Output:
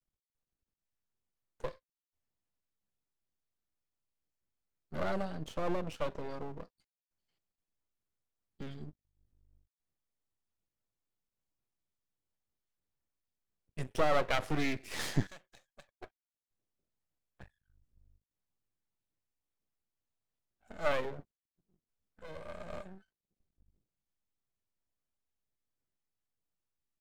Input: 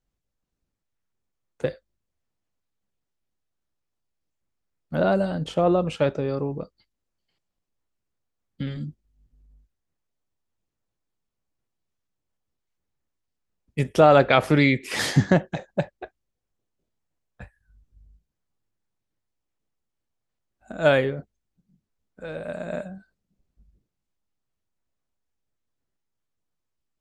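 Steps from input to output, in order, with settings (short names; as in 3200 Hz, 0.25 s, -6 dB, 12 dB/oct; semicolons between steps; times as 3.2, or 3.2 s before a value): 15.27–15.89 pre-emphasis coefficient 0.97; half-wave rectifier; gain -8 dB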